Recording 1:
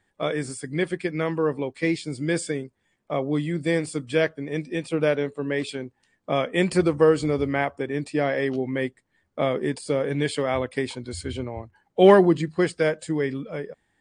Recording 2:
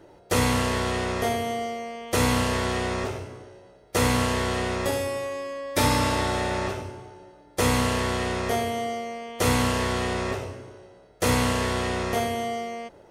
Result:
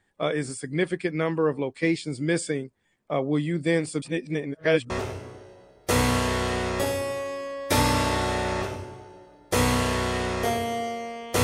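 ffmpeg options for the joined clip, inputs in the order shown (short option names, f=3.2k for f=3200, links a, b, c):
-filter_complex "[0:a]apad=whole_dur=11.43,atrim=end=11.43,asplit=2[a][b];[a]atrim=end=4.022[c];[b]atrim=start=4.018:end=4.902,asetpts=PTS-STARTPTS,areverse[d];[1:a]atrim=start=2.958:end=9.49[e];[c][d]acrossfade=d=0.004:c1=hsin:c2=hsin[f];[f][e]acrossfade=d=0.004:c1=hsin:c2=hsin"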